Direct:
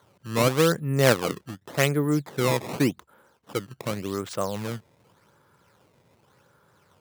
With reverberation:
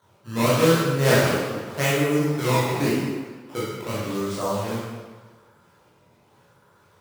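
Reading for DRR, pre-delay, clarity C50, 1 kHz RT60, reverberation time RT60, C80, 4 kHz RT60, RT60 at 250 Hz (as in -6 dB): -9.5 dB, 15 ms, -2.0 dB, 1.5 s, 1.4 s, 1.0 dB, 1.2 s, 1.3 s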